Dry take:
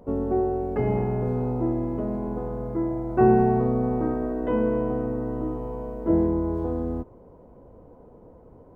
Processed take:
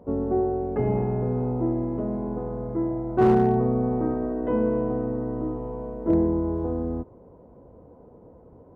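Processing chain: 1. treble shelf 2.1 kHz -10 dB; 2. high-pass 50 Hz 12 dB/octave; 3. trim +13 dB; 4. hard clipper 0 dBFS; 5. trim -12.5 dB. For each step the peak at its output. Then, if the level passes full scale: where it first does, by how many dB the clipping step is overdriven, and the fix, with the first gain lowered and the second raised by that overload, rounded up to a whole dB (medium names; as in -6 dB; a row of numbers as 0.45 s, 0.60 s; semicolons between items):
-8.0 dBFS, -8.0 dBFS, +5.0 dBFS, 0.0 dBFS, -12.5 dBFS; step 3, 5.0 dB; step 3 +8 dB, step 5 -7.5 dB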